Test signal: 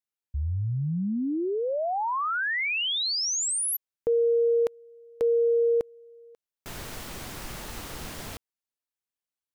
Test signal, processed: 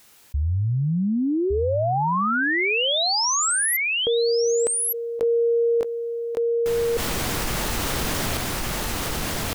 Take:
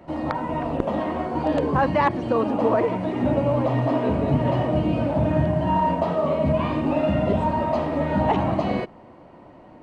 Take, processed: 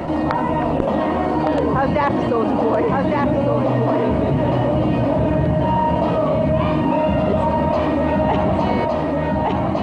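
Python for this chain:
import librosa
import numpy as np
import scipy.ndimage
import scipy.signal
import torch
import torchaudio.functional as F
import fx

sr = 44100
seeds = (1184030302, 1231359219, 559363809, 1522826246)

y = x + 10.0 ** (-5.0 / 20.0) * np.pad(x, (int(1161 * sr / 1000.0), 0))[:len(x)]
y = fx.env_flatten(y, sr, amount_pct=70)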